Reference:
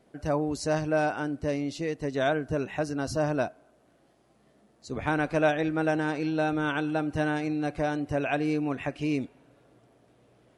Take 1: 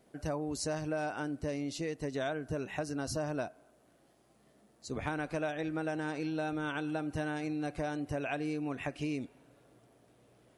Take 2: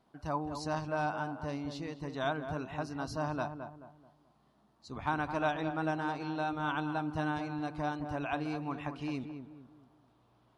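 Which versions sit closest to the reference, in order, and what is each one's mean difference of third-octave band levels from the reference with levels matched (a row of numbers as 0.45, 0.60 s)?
1, 2; 2.5, 4.0 dB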